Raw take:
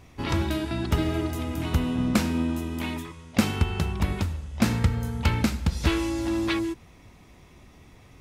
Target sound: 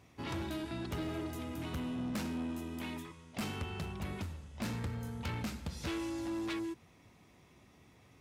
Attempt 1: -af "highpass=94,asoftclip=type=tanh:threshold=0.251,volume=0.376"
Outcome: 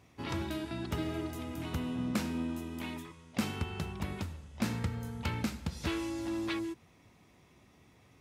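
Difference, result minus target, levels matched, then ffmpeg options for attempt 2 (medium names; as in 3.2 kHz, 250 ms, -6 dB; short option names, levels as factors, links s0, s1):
saturation: distortion -12 dB
-af "highpass=94,asoftclip=type=tanh:threshold=0.0631,volume=0.376"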